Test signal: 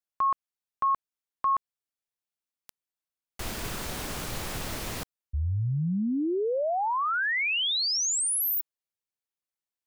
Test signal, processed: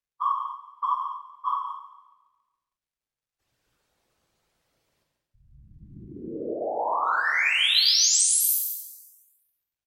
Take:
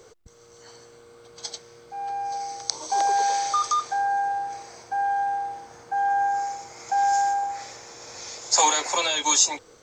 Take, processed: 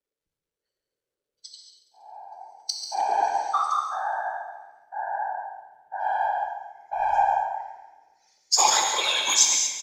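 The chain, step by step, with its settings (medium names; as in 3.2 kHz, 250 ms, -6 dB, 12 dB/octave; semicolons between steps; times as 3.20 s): expander on every frequency bin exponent 2; high-pass 410 Hz 12 dB/octave; treble shelf 7.8 kHz -9.5 dB; harmonic-percussive split percussive +4 dB; treble shelf 2.9 kHz +4.5 dB; in parallel at -4 dB: overload inside the chain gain 23.5 dB; on the sum: whisper effect; crackle 370 per s -56 dBFS; on a send: feedback delay 139 ms, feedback 58%, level -11.5 dB; on the sum: gated-style reverb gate 260 ms flat, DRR 1 dB; resampled via 32 kHz; three bands expanded up and down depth 40%; trim -6.5 dB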